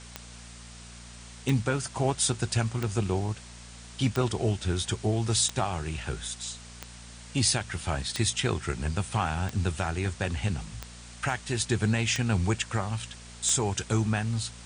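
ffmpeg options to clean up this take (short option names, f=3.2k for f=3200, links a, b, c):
-af "adeclick=t=4,bandreject=f=58.8:t=h:w=4,bandreject=f=117.6:t=h:w=4,bandreject=f=176.4:t=h:w=4,bandreject=f=235.2:t=h:w=4,afftdn=nr=28:nf=-46"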